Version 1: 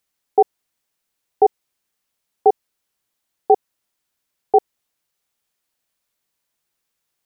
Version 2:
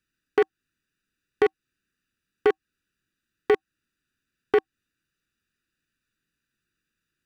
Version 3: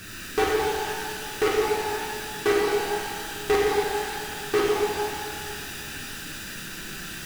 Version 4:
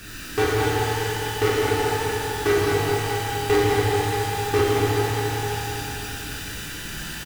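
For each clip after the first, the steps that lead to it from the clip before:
local Wiener filter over 41 samples; in parallel at +1 dB: compression, threshold -20 dBFS, peak gain reduction 11.5 dB; on the sum: FFT filter 320 Hz 0 dB, 770 Hz -21 dB, 1.1 kHz +6 dB, 1.6 kHz +13 dB
chorus voices 2, 0.29 Hz, delay 10 ms, depth 4.9 ms; power-law waveshaper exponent 0.35; pitch-shifted reverb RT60 2.3 s, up +12 st, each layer -8 dB, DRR -5 dB; trim -4.5 dB
octave divider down 2 oct, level 0 dB; feedback delay 209 ms, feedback 57%, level -8 dB; FDN reverb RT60 3.2 s, high-frequency decay 0.85×, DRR 2 dB

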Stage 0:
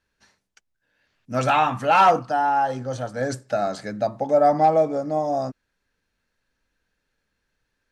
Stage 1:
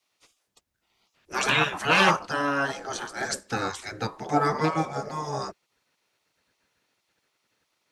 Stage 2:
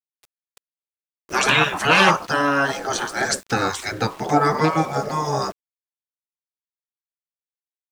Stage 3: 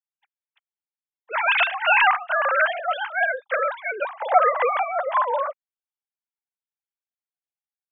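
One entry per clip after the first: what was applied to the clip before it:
spectral gate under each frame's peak -15 dB weak; trim +7 dB
in parallel at +2 dB: compression, threshold -29 dBFS, peak gain reduction 13.5 dB; on the sum: small samples zeroed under -42 dBFS; trim +2.5 dB
formants replaced by sine waves; trim -1.5 dB

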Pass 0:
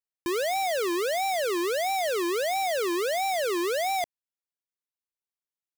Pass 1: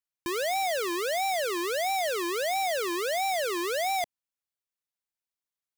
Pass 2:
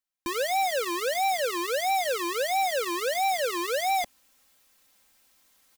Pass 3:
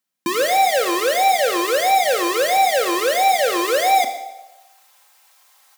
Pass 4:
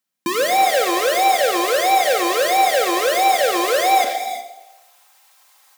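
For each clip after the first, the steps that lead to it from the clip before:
peaking EQ 380 Hz -4.5 dB 1.1 oct
comb 3.8 ms, depth 64%; reverse; upward compressor, threshold -41 dBFS; reverse
feedback echo behind a band-pass 129 ms, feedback 36%, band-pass 480 Hz, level -14 dB; Schroeder reverb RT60 0.85 s, combs from 27 ms, DRR 7.5 dB; high-pass sweep 170 Hz -> 800 Hz, 3.60–4.82 s; trim +8 dB
gated-style reverb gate 380 ms rising, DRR 8 dB

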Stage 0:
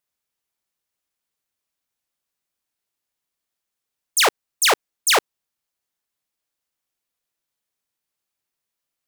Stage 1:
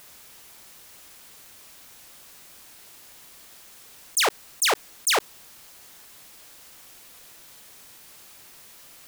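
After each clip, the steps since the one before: level flattener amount 70%; trim -5.5 dB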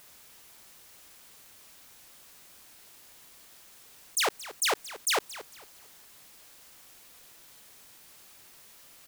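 feedback delay 226 ms, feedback 31%, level -16 dB; trim -5.5 dB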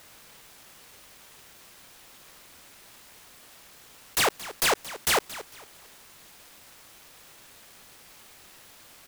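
delay time shaken by noise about 4.4 kHz, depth 0.036 ms; trim +4 dB

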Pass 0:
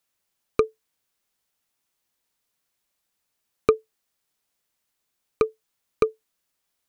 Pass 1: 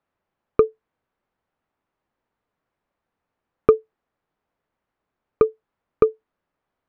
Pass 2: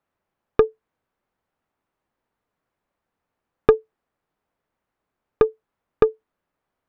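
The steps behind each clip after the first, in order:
low-pass 1.3 kHz 12 dB/octave; in parallel at -2 dB: peak limiter -17.5 dBFS, peak gain reduction 11.5 dB; on the sum: trim +2.5 dB
tracing distortion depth 0.11 ms

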